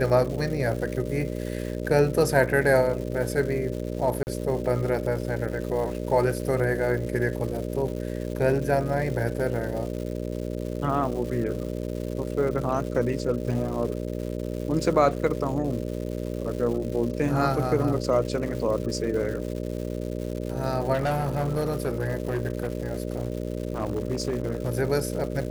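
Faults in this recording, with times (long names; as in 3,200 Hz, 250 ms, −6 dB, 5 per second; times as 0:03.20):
mains buzz 60 Hz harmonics 10 −31 dBFS
surface crackle 310 per second −34 dBFS
0:04.23–0:04.27: drop-out 39 ms
0:20.93–0:24.70: clipping −21 dBFS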